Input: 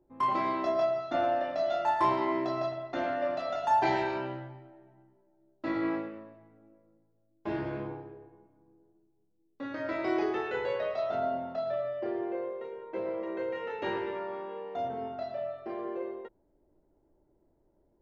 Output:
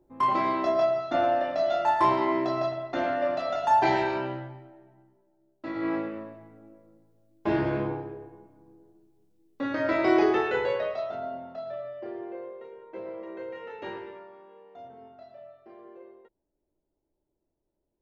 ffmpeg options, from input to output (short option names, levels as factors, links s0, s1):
-af "volume=5.62,afade=t=out:st=4.38:d=1.35:silence=0.446684,afade=t=in:st=5.73:d=0.49:silence=0.281838,afade=t=out:st=10.33:d=0.84:silence=0.251189,afade=t=out:st=13.84:d=0.48:silence=0.398107"